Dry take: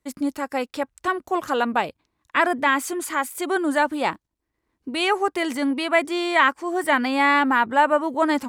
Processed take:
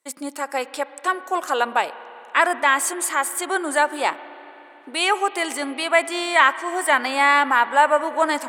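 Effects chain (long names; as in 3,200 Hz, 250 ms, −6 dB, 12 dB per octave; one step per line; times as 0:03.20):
high-pass filter 490 Hz 12 dB per octave
parametric band 8,600 Hz +9 dB 0.51 octaves
spring reverb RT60 3.7 s, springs 31/54 ms, chirp 45 ms, DRR 15 dB
level +2.5 dB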